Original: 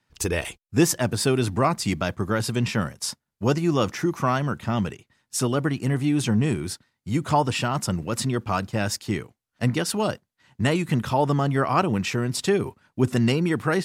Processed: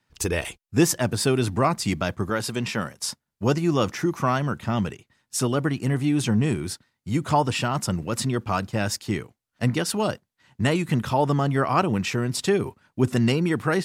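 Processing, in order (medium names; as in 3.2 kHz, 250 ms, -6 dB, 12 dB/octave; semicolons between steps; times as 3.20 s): 2.30–2.99 s: bass shelf 140 Hz -11.5 dB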